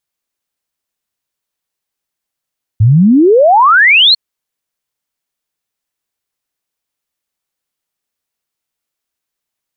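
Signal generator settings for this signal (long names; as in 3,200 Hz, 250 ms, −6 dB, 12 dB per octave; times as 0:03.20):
exponential sine sweep 100 Hz → 4,400 Hz 1.35 s −3.5 dBFS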